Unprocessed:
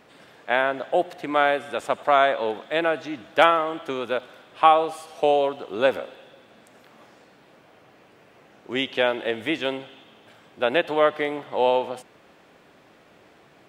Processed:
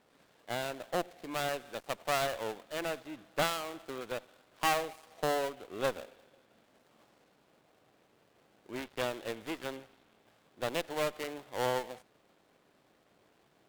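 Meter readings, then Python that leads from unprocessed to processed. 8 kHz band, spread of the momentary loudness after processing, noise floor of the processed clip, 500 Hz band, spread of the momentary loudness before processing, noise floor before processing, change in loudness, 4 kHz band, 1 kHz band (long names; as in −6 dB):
can't be measured, 11 LU, −69 dBFS, −13.5 dB, 12 LU, −55 dBFS, −13.0 dB, −9.5 dB, −14.5 dB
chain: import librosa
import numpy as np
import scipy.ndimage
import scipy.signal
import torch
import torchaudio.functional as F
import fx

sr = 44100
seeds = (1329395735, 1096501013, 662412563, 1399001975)

y = fx.dead_time(x, sr, dead_ms=0.22)
y = fx.tube_stage(y, sr, drive_db=12.0, bias=0.8)
y = F.gain(torch.from_numpy(y), -7.0).numpy()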